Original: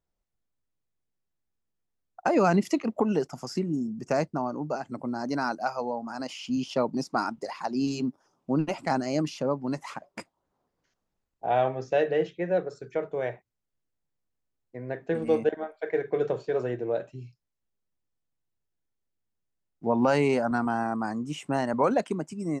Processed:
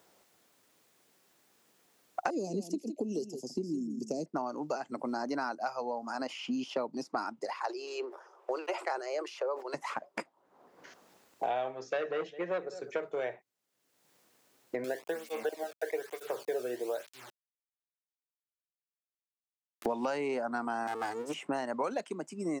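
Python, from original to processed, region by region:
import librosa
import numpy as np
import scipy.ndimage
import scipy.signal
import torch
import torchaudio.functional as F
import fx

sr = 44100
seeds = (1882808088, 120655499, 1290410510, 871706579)

y = fx.chain(x, sr, fx.cheby1_bandstop(low_hz=340.0, high_hz=5700.0, order=2),
    fx.echo_single(ms=164, db=-11.5), at=(2.3, 4.26))
y = fx.chain(y, sr, fx.cheby_ripple_highpass(hz=350.0, ripple_db=3),
    fx.sustainer(db_per_s=130.0), at=(7.54, 9.74))
y = fx.chain(y, sr, fx.echo_single(ms=212, db=-19.5),
    fx.transformer_sat(knee_hz=1000.0), at=(11.71, 13.24))
y = fx.chain(y, sr, fx.quant_dither(seeds[0], bits=8, dither='none'),
    fx.flanger_cancel(hz=1.1, depth_ms=1.1), at=(14.84, 19.86))
y = fx.chain(y, sr, fx.lower_of_two(delay_ms=2.5),
    fx.high_shelf(hz=6700.0, db=11.0), at=(20.87, 21.34))
y = scipy.signal.sosfilt(scipy.signal.butter(2, 300.0, 'highpass', fs=sr, output='sos'), y)
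y = fx.band_squash(y, sr, depth_pct=100)
y = y * 10.0 ** (-5.0 / 20.0)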